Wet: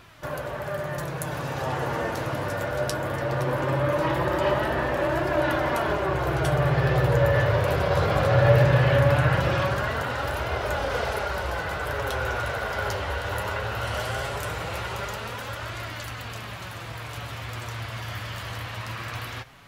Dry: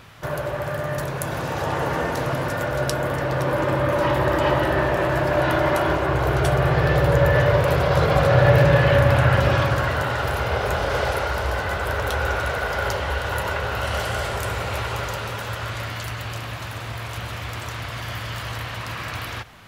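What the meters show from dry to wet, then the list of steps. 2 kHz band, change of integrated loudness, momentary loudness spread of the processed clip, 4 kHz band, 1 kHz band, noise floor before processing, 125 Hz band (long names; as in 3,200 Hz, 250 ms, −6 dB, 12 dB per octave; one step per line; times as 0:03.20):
−4.0 dB, −4.0 dB, 13 LU, −4.0 dB, −4.0 dB, −32 dBFS, −3.5 dB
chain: flanger 0.19 Hz, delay 2.8 ms, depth 7.8 ms, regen +49%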